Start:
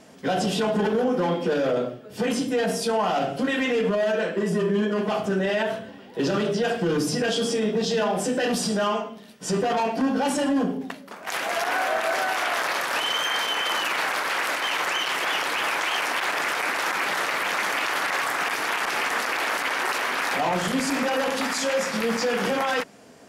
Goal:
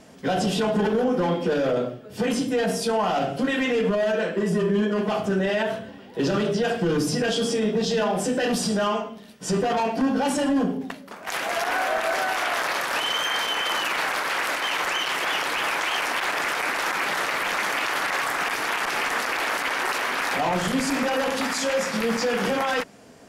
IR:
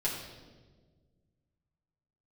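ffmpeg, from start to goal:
-af "lowshelf=f=74:g=11.5"

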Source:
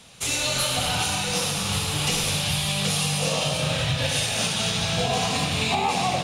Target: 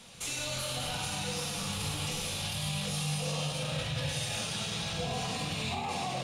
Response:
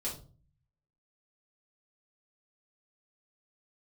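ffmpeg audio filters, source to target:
-filter_complex "[0:a]alimiter=limit=-23.5dB:level=0:latency=1,asplit=2[a][b];[1:a]atrim=start_sample=2205[c];[b][c]afir=irnorm=-1:irlink=0,volume=-4.5dB[d];[a][d]amix=inputs=2:normalize=0,volume=-6dB"

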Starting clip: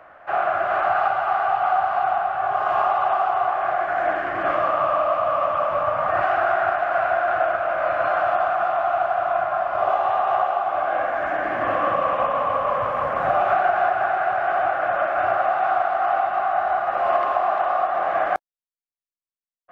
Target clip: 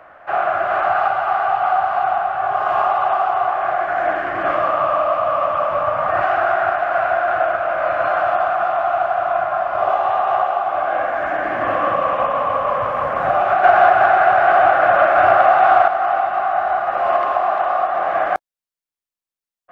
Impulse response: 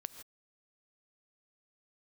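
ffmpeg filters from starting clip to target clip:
-filter_complex "[0:a]asettb=1/sr,asplit=3[a][b][c];[a]atrim=end=13.634[d];[b]atrim=start=13.63:end=15.88,asetpts=PTS-STARTPTS,afade=t=in:d=0.004:c=qsin,afade=t=out:st=2.246:d=0.004:c=qsin,acontrast=52[e];[c]atrim=start=15.876[f];[d][e]acrossfade=d=0.004:c1=hsin:c2=qsin[g];[g][f]acrossfade=d=0.004:c1=qsin:c2=hsin,volume=3dB"

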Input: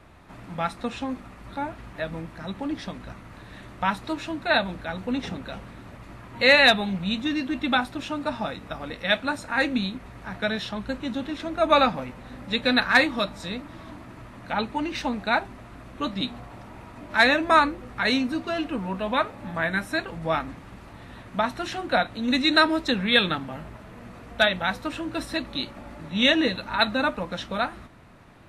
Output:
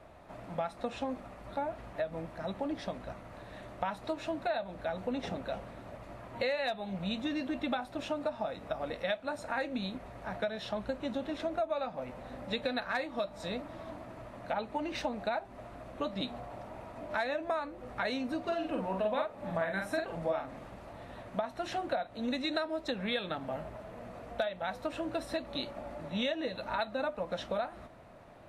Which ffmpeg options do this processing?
-filter_complex "[0:a]equalizer=f=620:t=o:w=0.87:g=12,acompressor=threshold=-23dB:ratio=12,asettb=1/sr,asplit=3[a][b][c];[a]atrim=end=18.414[d];[b]atrim=start=18.41:end=20.68,asetpts=PTS-STARTPTS,afade=t=in:d=0.004:c=qsin,afade=t=out:st=2.266:d=0.004:c=qsin,asplit=2[e][f];[f]adelay=47,volume=-4dB[g];[e][g]amix=inputs=2:normalize=0,atrim=end_sample=100107[h];[c]atrim=start=20.676[i];[d][h]acrossfade=d=0.004:c1=hsin:c2=qsin[j];[j][i]acrossfade=d=0.004:c1=qsin:c2=hsin,volume=-7dB"

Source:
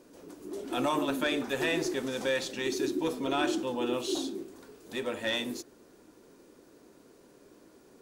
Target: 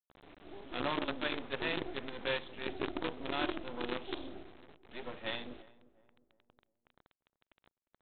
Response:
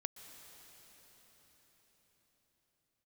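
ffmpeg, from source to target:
-filter_complex "[0:a]aresample=8000,acrusher=bits=5:dc=4:mix=0:aa=0.000001,aresample=44100,asplit=2[a][b];[b]adelay=354,lowpass=f=940:p=1,volume=-18.5dB,asplit=2[c][d];[d]adelay=354,lowpass=f=940:p=1,volume=0.44,asplit=2[e][f];[f]adelay=354,lowpass=f=940:p=1,volume=0.44,asplit=2[g][h];[h]adelay=354,lowpass=f=940:p=1,volume=0.44[i];[a][c][e][g][i]amix=inputs=5:normalize=0,volume=-6.5dB"

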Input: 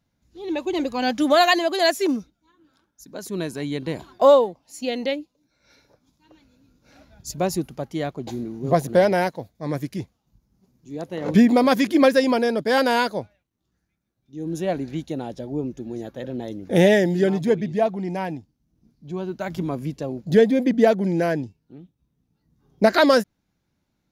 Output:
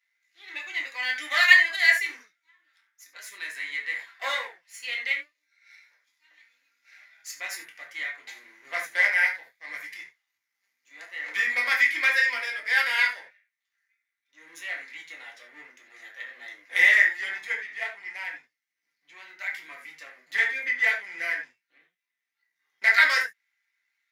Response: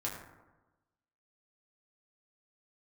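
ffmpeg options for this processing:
-filter_complex "[0:a]aeval=exprs='if(lt(val(0),0),0.447*val(0),val(0))':c=same,aeval=exprs='0.562*(cos(1*acos(clip(val(0)/0.562,-1,1)))-cos(1*PI/2))+0.0178*(cos(5*acos(clip(val(0)/0.562,-1,1)))-cos(5*PI/2))+0.0355*(cos(8*acos(clip(val(0)/0.562,-1,1)))-cos(8*PI/2))':c=same,highpass=f=2k:t=q:w=8.4[a];[1:a]atrim=start_sample=2205,atrim=end_sample=4410[b];[a][b]afir=irnorm=-1:irlink=0,volume=-2.5dB"

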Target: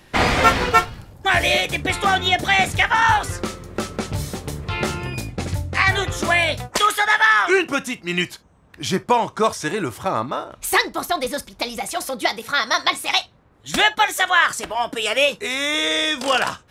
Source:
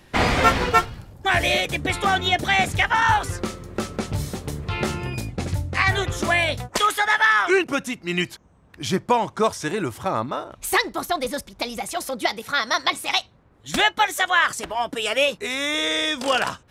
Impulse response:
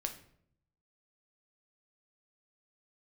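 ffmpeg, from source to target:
-filter_complex "[0:a]asplit=2[a][b];[1:a]atrim=start_sample=2205,atrim=end_sample=3087,lowshelf=f=330:g=-10.5[c];[b][c]afir=irnorm=-1:irlink=0,volume=-4dB[d];[a][d]amix=inputs=2:normalize=0,volume=-1dB"

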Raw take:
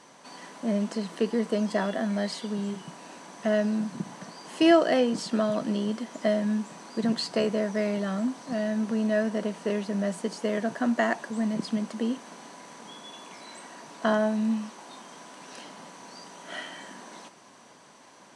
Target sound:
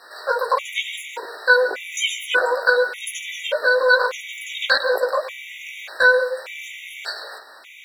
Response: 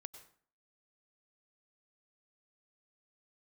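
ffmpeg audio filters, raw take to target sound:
-filter_complex "[0:a]asplit=2[a][b];[b]highpass=f=720:p=1,volume=13dB,asoftclip=type=tanh:threshold=-8dB[c];[a][c]amix=inputs=2:normalize=0,lowpass=f=1.4k:p=1,volume=-6dB,asetrate=103194,aresample=44100,asplit=2[d][e];[e]highshelf=f=5.2k:t=q:w=1.5:g=-11.5[f];[1:a]atrim=start_sample=2205,afade=t=out:st=0.27:d=0.01,atrim=end_sample=12348,adelay=18[g];[f][g]afir=irnorm=-1:irlink=0,volume=6dB[h];[d][h]amix=inputs=2:normalize=0,afftfilt=real='re*gt(sin(2*PI*0.85*pts/sr)*(1-2*mod(floor(b*sr/1024/1900),2)),0)':imag='im*gt(sin(2*PI*0.85*pts/sr)*(1-2*mod(floor(b*sr/1024/1900),2)),0)':win_size=1024:overlap=0.75,volume=5dB"

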